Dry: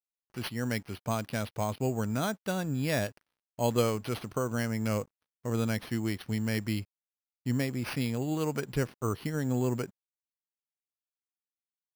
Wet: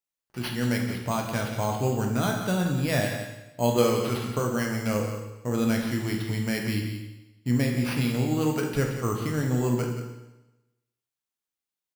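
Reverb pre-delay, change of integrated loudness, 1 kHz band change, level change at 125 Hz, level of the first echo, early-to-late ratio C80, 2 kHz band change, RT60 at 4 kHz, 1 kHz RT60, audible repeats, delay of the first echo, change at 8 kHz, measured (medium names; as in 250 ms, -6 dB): 17 ms, +5.0 dB, +5.5 dB, +5.5 dB, -10.0 dB, 5.5 dB, +5.5 dB, 1.0 s, 1.0 s, 1, 176 ms, +5.0 dB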